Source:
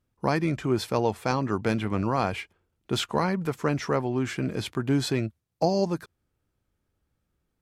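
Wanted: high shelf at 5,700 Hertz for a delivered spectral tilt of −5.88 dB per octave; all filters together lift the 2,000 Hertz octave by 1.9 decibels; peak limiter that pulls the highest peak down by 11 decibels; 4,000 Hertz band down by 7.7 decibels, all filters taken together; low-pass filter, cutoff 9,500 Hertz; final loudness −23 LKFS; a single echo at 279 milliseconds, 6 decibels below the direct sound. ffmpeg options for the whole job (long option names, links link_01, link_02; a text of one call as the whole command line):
ffmpeg -i in.wav -af "lowpass=9500,equalizer=frequency=2000:width_type=o:gain=5.5,equalizer=frequency=4000:width_type=o:gain=-9,highshelf=frequency=5700:gain=-7.5,alimiter=limit=-20.5dB:level=0:latency=1,aecho=1:1:279:0.501,volume=8.5dB" out.wav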